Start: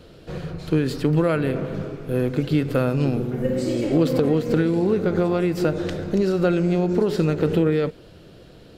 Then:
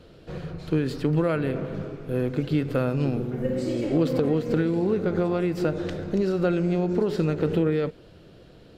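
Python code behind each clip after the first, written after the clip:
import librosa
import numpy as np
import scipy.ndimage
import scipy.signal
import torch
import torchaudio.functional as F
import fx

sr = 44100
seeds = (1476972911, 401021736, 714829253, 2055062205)

y = fx.high_shelf(x, sr, hz=6200.0, db=-6.0)
y = y * librosa.db_to_amplitude(-3.5)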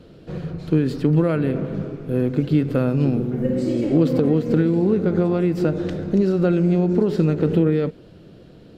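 y = fx.peak_eq(x, sr, hz=210.0, db=7.5, octaves=2.0)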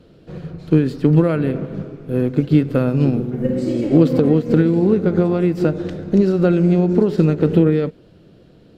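y = fx.upward_expand(x, sr, threshold_db=-29.0, expansion=1.5)
y = y * librosa.db_to_amplitude(5.0)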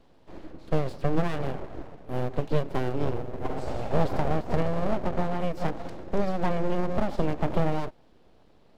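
y = np.abs(x)
y = y * librosa.db_to_amplitude(-8.5)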